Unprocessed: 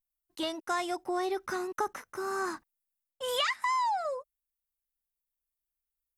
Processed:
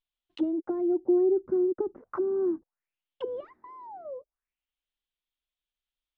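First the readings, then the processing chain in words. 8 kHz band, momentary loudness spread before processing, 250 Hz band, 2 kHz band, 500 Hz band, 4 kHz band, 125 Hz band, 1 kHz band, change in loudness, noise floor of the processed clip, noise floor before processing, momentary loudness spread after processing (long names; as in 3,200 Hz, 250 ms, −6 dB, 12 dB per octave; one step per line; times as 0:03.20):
below −35 dB, 10 LU, +11.0 dB, below −20 dB, +7.5 dB, below −20 dB, can't be measured, −13.5 dB, +4.5 dB, below −85 dBFS, below −85 dBFS, 20 LU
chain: envelope-controlled low-pass 350–3,400 Hz down, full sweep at −33.5 dBFS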